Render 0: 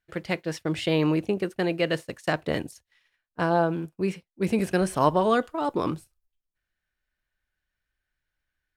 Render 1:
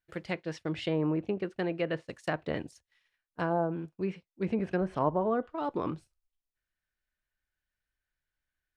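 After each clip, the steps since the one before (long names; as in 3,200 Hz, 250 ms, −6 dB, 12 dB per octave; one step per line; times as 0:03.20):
treble cut that deepens with the level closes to 1,000 Hz, closed at −18 dBFS
level −6 dB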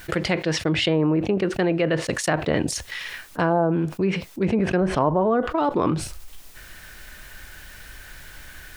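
envelope flattener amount 70%
level +6 dB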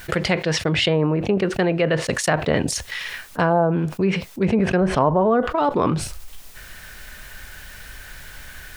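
parametric band 320 Hz −7.5 dB 0.2 octaves
level +3 dB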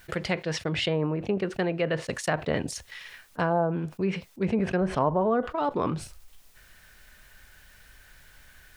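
expander for the loud parts 1.5 to 1, over −32 dBFS
level −6 dB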